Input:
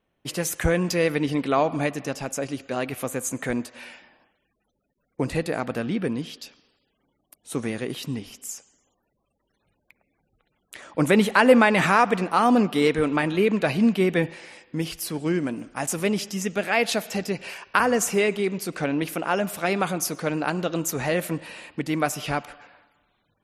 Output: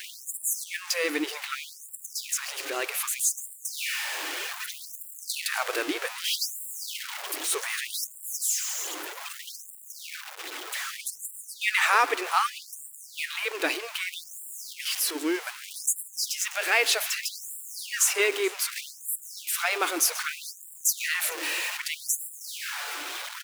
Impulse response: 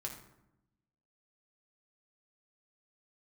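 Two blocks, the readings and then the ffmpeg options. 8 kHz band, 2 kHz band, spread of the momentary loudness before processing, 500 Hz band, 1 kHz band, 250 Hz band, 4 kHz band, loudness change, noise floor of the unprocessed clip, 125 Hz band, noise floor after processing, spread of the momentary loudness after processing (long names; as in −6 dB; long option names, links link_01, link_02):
+6.0 dB, −1.0 dB, 14 LU, −11.0 dB, −6.0 dB, −15.5 dB, +4.0 dB, −4.0 dB, −74 dBFS, below −40 dB, −47 dBFS, 14 LU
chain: -af "aeval=exprs='val(0)+0.5*0.0398*sgn(val(0))':channel_layout=same,aecho=1:1:432|864|1296:0.0794|0.035|0.0154,dynaudnorm=framelen=940:gausssize=7:maxgain=5.5dB,equalizer=frequency=600:width_type=o:width=1.4:gain=-10.5,afftfilt=real='re*gte(b*sr/1024,280*pow(7300/280,0.5+0.5*sin(2*PI*0.64*pts/sr)))':imag='im*gte(b*sr/1024,280*pow(7300/280,0.5+0.5*sin(2*PI*0.64*pts/sr)))':win_size=1024:overlap=0.75"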